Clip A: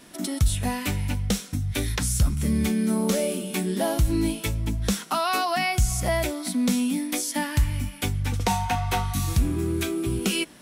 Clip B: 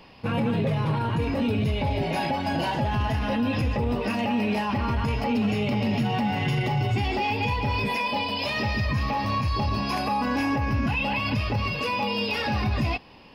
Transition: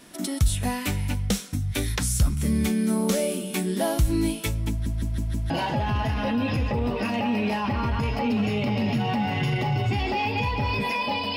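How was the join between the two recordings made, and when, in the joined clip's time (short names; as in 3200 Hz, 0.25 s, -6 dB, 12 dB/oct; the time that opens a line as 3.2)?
clip A
4.7 stutter in place 0.16 s, 5 plays
5.5 switch to clip B from 2.55 s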